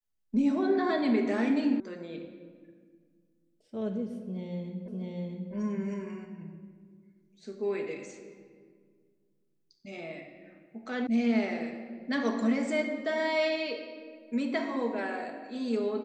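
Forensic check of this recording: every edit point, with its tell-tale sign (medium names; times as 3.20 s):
1.80 s: sound stops dead
4.88 s: repeat of the last 0.65 s
11.07 s: sound stops dead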